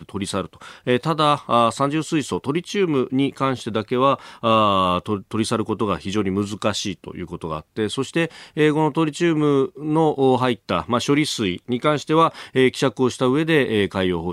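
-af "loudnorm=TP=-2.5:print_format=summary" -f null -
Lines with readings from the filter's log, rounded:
Input Integrated:    -20.6 LUFS
Input True Peak:      -4.3 dBTP
Input LRA:             3.4 LU
Input Threshold:     -30.7 LUFS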